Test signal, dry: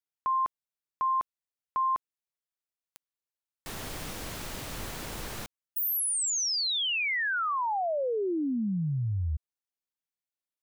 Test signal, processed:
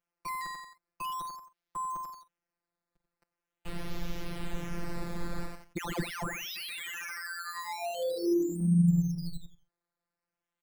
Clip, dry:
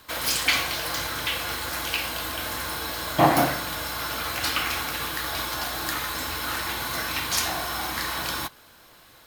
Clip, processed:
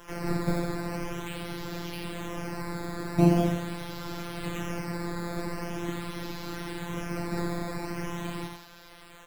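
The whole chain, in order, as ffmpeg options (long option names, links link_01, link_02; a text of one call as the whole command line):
ffmpeg -i in.wav -filter_complex "[0:a]lowshelf=frequency=79:gain=7.5,asplit=2[link_01][link_02];[link_02]adelay=45,volume=-13dB[link_03];[link_01][link_03]amix=inputs=2:normalize=0,aecho=1:1:89|178|267:0.398|0.104|0.0269,acrusher=samples=10:mix=1:aa=0.000001:lfo=1:lforange=10:lforate=0.43,afftfilt=real='hypot(re,im)*cos(PI*b)':imag='0':win_size=1024:overlap=0.75,acrossover=split=400[link_04][link_05];[link_05]acompressor=threshold=-45dB:ratio=2.5:attack=0.16:release=26:knee=2.83:detection=peak[link_06];[link_04][link_06]amix=inputs=2:normalize=0,volume=5.5dB" out.wav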